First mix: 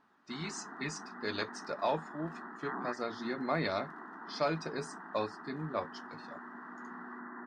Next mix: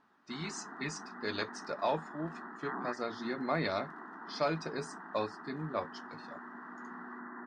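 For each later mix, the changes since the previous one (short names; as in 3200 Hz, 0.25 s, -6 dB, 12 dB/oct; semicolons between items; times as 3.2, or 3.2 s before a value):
speech: add LPF 11000 Hz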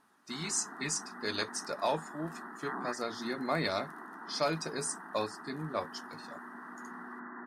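master: remove air absorption 160 m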